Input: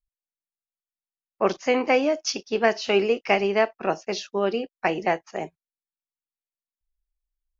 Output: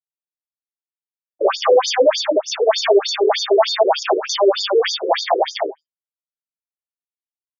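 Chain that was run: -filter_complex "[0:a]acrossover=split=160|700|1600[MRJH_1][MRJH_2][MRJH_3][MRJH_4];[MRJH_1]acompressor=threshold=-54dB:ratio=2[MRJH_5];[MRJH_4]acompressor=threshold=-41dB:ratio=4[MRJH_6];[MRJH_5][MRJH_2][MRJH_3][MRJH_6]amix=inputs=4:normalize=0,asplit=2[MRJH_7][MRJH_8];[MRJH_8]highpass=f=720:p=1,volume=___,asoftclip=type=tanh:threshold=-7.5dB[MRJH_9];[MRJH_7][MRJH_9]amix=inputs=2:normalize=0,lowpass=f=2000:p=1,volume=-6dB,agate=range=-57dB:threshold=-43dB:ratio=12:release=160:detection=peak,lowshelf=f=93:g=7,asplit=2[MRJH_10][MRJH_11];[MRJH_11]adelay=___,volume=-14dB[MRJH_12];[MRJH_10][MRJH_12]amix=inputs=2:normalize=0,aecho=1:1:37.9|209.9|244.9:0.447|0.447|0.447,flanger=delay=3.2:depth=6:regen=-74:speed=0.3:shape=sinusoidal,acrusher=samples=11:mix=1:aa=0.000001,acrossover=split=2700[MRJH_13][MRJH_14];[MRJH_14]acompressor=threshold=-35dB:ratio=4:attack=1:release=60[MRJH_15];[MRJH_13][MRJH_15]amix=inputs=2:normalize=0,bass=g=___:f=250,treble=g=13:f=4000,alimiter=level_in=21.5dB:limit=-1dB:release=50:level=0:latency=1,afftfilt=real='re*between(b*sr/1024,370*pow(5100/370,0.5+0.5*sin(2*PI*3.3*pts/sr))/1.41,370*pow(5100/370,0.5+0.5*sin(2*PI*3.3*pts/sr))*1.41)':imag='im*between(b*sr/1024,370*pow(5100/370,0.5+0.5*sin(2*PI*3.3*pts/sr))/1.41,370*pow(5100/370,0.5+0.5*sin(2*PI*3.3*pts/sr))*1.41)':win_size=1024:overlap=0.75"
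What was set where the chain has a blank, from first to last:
14dB, 15, -13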